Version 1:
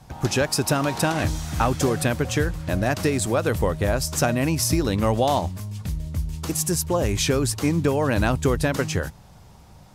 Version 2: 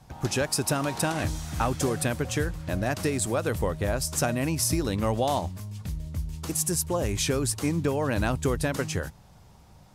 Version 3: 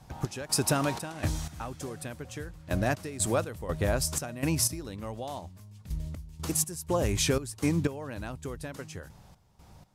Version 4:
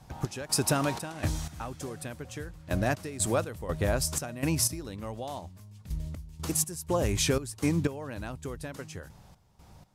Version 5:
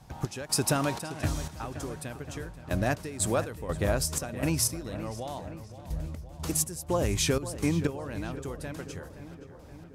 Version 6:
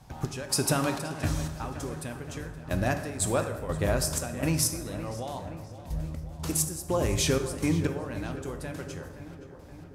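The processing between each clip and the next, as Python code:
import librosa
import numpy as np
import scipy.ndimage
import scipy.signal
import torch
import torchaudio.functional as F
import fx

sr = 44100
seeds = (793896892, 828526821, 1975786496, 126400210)

y1 = fx.dynamic_eq(x, sr, hz=9500.0, q=1.4, threshold_db=-43.0, ratio=4.0, max_db=5)
y1 = F.gain(torch.from_numpy(y1), -5.0).numpy()
y2 = fx.step_gate(y1, sr, bpm=61, pattern='x.xx.x.....x.', floor_db=-12.0, edge_ms=4.5)
y3 = y2
y4 = fx.echo_filtered(y3, sr, ms=522, feedback_pct=66, hz=3100.0, wet_db=-13)
y5 = fx.rev_plate(y4, sr, seeds[0], rt60_s=1.2, hf_ratio=0.6, predelay_ms=0, drr_db=6.5)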